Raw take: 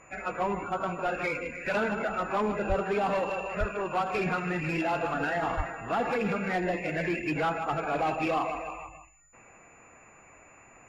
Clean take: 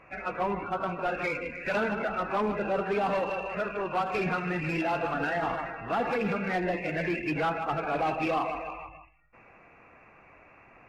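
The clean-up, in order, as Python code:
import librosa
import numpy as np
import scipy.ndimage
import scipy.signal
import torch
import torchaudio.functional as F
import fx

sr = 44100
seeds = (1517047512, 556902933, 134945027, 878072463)

y = fx.notch(x, sr, hz=7000.0, q=30.0)
y = fx.fix_deplosive(y, sr, at_s=(2.68, 3.59, 5.56))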